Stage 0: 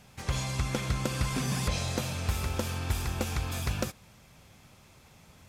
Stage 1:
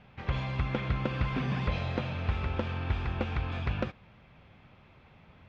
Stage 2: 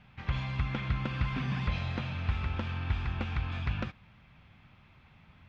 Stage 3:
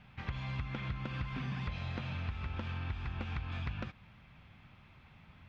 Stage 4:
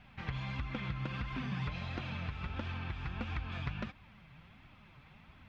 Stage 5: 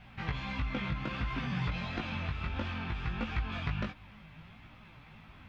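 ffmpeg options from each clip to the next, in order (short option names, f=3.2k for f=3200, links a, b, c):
-af "lowpass=f=3.1k:w=0.5412,lowpass=f=3.1k:w=1.3066"
-af "equalizer=f=480:t=o:w=1.3:g=-10"
-af "acompressor=threshold=-35dB:ratio=6"
-af "flanger=delay=2.6:depth=4.6:regen=36:speed=1.5:shape=triangular,volume=5dB"
-af "flanger=delay=17.5:depth=2.2:speed=0.63,volume=7.5dB"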